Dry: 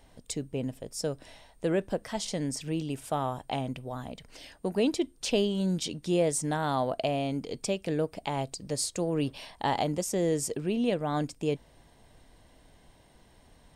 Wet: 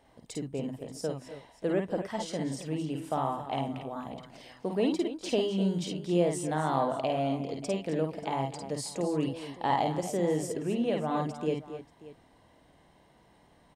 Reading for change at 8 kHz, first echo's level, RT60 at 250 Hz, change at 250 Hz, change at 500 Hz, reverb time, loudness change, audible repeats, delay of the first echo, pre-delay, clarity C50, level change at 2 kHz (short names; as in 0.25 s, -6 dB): -7.0 dB, -2.5 dB, none, -0.5 dB, -0.5 dB, none, -0.5 dB, 3, 52 ms, none, none, -2.0 dB